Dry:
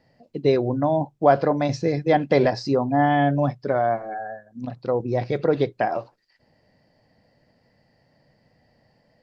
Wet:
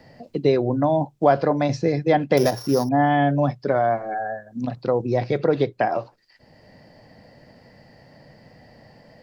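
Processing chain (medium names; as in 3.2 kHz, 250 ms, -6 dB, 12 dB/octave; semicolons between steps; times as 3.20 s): 2.37–2.89 s: sorted samples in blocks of 8 samples; three bands compressed up and down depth 40%; trim +1 dB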